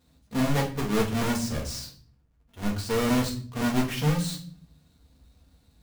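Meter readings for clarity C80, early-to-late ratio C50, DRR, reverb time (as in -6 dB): 15.0 dB, 9.5 dB, -1.0 dB, no single decay rate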